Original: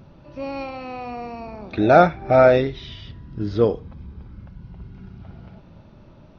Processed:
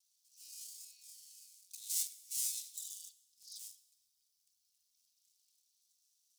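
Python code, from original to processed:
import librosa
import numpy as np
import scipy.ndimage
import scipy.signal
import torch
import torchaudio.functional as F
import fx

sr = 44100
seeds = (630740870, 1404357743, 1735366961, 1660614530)

y = fx.lower_of_two(x, sr, delay_ms=4.0)
y = scipy.signal.sosfilt(scipy.signal.cheby2(4, 80, 1400.0, 'highpass', fs=sr, output='sos'), y)
y = fx.rev_plate(y, sr, seeds[0], rt60_s=1.2, hf_ratio=0.9, predelay_ms=0, drr_db=15.0)
y = y * 10.0 ** (12.5 / 20.0)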